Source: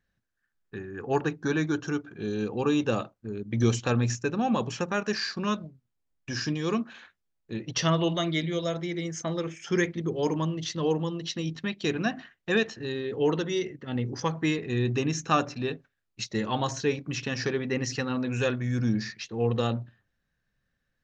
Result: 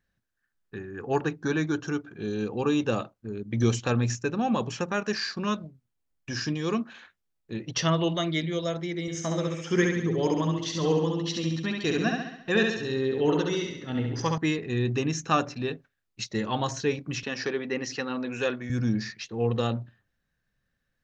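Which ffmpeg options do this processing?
-filter_complex "[0:a]asettb=1/sr,asplit=3[a][b][c];[a]atrim=end=9.014[d];[b]atrim=start=9.01:end=14.38,asetpts=PTS-STARTPTS,afade=t=in:d=0.004:c=qsin,afade=t=out:st=5.366:d=0.004:c=qsin,aecho=1:1:68|136|204|272|340|408|476:0.668|0.354|0.188|0.0995|0.0527|0.0279|0.0148,atrim=end_sample=236817[e];[c]atrim=start=14.376[f];[d][e]acrossfade=d=0.004:c1=hsin:c2=qsin[g];[g][f]acrossfade=d=0.004:c1=qsin:c2=hsin,asettb=1/sr,asplit=3[h][i][j];[h]atrim=end=17.234[k];[i]atrim=start=17.23:end=18.7,asetpts=PTS-STARTPTS,afade=t=in:d=0.004:c=qsin,afade=t=out:st=1.466:d=0.004:c=qsin,highpass=240,lowpass=6.2k[l];[j]atrim=start=18.696[m];[k][l]acrossfade=d=0.004:c1=hsin:c2=qsin[n];[n][m]acrossfade=d=0.004:c1=qsin:c2=hsin"

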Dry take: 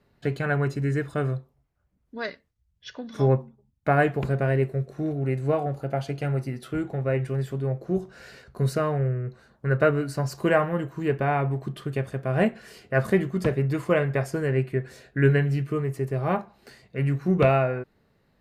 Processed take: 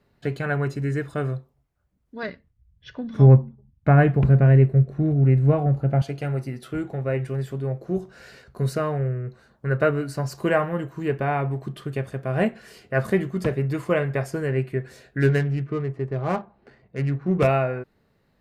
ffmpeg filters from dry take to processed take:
-filter_complex "[0:a]asettb=1/sr,asplit=3[a][b][c];[a]atrim=end=2.234[d];[b]atrim=start=2.23:end=6.02,asetpts=PTS-STARTPTS,afade=t=in:d=0.004:c=qsin,afade=t=out:st=3.786:d=0.004:c=qsin,bass=f=250:g=12,treble=f=4k:g=-11[e];[c]atrim=start=6.016[f];[d][e]acrossfade=d=0.004:c1=hsin:c2=qsin[g];[g][f]acrossfade=d=0.004:c1=qsin:c2=hsin,asplit=3[h][i][j];[h]afade=t=out:st=15.2:d=0.02[k];[i]adynamicsmooth=sensitivity=6.5:basefreq=1.5k,afade=t=in:st=15.2:d=0.02,afade=t=out:st=17.46:d=0.02[l];[j]afade=t=in:st=17.46:d=0.02[m];[k][l][m]amix=inputs=3:normalize=0"

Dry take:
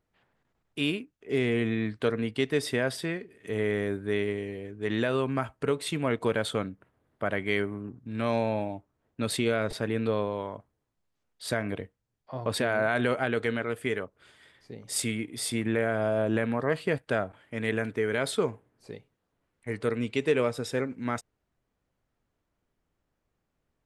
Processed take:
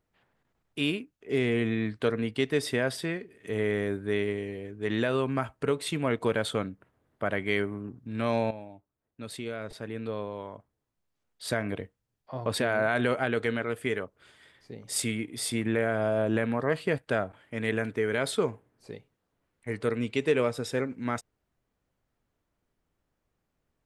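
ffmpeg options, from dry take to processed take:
-filter_complex "[0:a]asplit=2[a][b];[a]atrim=end=8.51,asetpts=PTS-STARTPTS,afade=t=out:st=8.506:d=0.004:c=hsin:silence=0.251189[c];[b]atrim=start=8.51,asetpts=PTS-STARTPTS,afade=t=in:d=2.94:c=qua:silence=0.251189[d];[c][d]concat=n=2:v=0:a=1"

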